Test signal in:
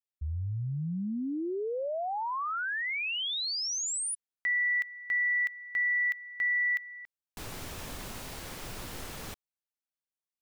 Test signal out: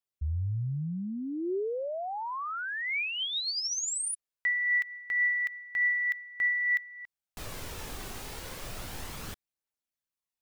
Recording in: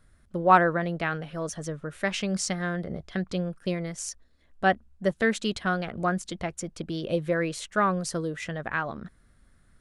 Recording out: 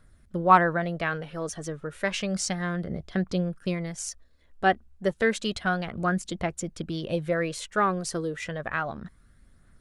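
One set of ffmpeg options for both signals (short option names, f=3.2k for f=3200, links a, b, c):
-af "aphaser=in_gain=1:out_gain=1:delay=2.7:decay=0.3:speed=0.31:type=triangular"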